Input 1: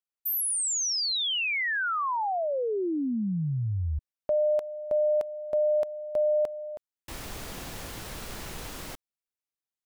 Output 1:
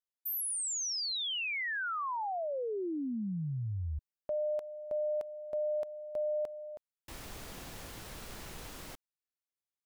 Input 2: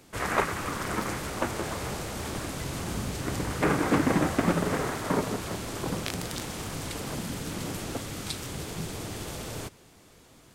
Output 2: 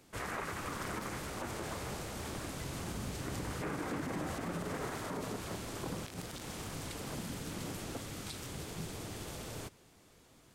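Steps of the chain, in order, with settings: peak limiter -22.5 dBFS; trim -7 dB

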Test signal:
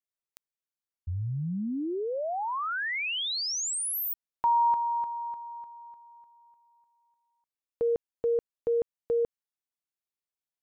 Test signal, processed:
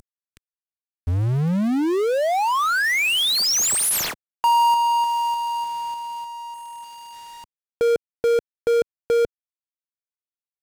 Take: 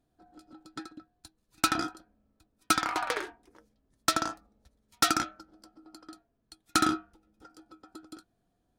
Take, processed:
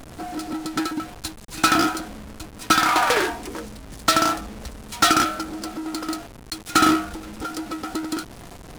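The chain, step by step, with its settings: CVSD coder 64 kbps; power-law waveshaper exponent 0.5; trim +5.5 dB

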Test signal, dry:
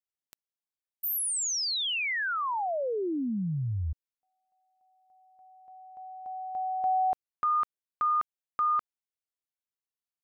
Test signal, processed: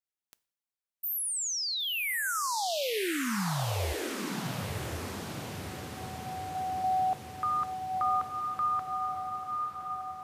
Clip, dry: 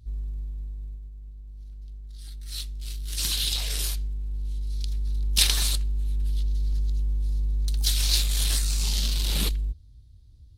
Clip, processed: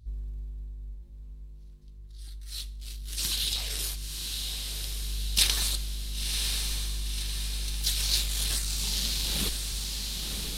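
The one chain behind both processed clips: echo that smears into a reverb 1034 ms, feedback 61%, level -4 dB; two-slope reverb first 0.54 s, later 1.5 s, from -23 dB, DRR 16.5 dB; trim -2.5 dB

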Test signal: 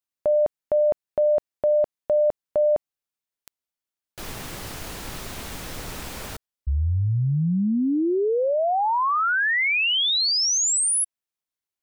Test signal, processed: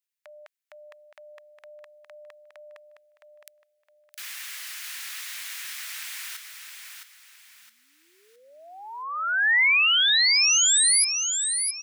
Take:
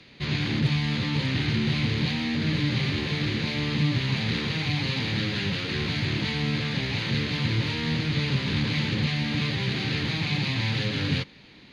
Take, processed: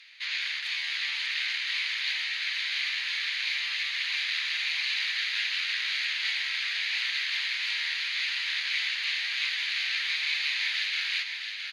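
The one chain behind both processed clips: ladder high-pass 1.5 kHz, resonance 35%; treble shelf 5.6 kHz +4.5 dB; on a send: feedback delay 664 ms, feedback 33%, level -6 dB; on the sum: trim +5.5 dB

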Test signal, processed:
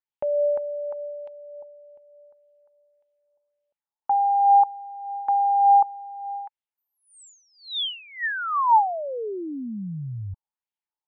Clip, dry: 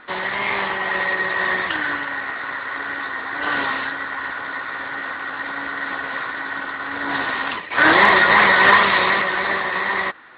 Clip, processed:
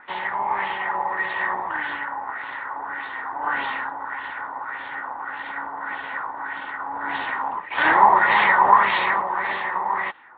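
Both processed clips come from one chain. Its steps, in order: peaking EQ 870 Hz +12.5 dB 0.34 oct; LFO low-pass sine 1.7 Hz 880–3200 Hz; trim -9.5 dB

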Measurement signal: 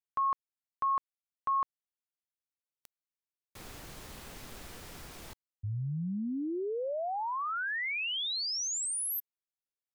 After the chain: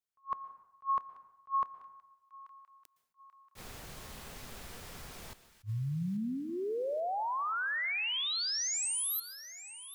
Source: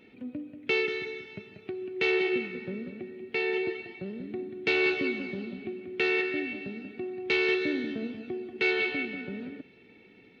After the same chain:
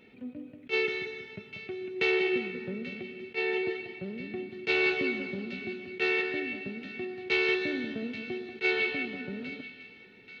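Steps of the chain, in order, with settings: peaking EQ 310 Hz -6.5 dB 0.28 oct; on a send: feedback echo behind a high-pass 835 ms, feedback 49%, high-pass 1.5 kHz, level -15 dB; on the sum: plate-style reverb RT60 0.98 s, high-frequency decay 0.65×, pre-delay 105 ms, DRR 15.5 dB; attacks held to a fixed rise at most 400 dB/s

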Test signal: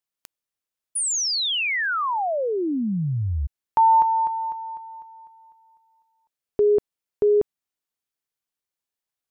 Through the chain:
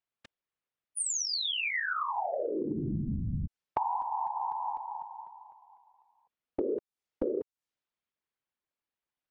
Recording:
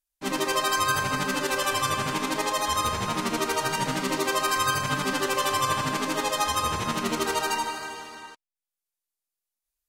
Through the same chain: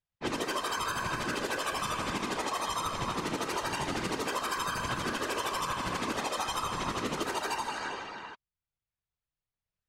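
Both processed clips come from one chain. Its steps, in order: whisper effect; treble shelf 10 kHz -5.5 dB; level-controlled noise filter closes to 3 kHz, open at -22.5 dBFS; compression 10:1, threshold -29 dBFS

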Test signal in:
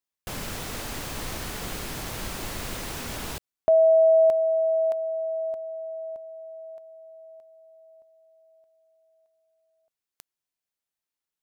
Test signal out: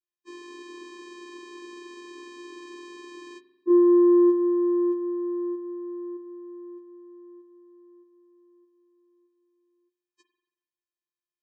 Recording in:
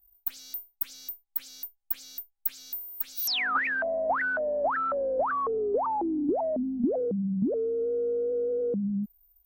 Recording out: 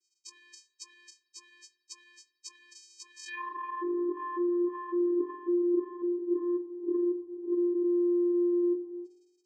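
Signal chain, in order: frequency axis rescaled in octaves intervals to 76%; vocoder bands 8, square 350 Hz; spring tank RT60 1 s, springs 45 ms, chirp 45 ms, DRR 9 dB

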